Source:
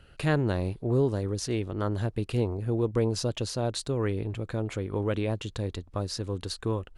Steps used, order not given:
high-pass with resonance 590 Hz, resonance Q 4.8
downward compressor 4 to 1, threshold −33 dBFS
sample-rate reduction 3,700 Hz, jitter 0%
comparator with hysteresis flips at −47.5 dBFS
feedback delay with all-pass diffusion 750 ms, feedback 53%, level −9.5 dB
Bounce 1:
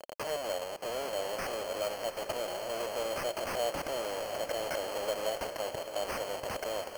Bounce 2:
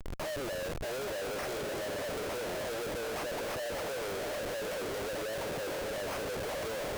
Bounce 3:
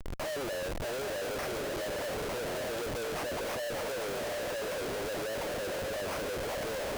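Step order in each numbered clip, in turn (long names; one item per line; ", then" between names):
downward compressor, then comparator with hysteresis, then high-pass with resonance, then sample-rate reduction, then feedback delay with all-pass diffusion
sample-rate reduction, then high-pass with resonance, then downward compressor, then feedback delay with all-pass diffusion, then comparator with hysteresis
downward compressor, then feedback delay with all-pass diffusion, then sample-rate reduction, then high-pass with resonance, then comparator with hysteresis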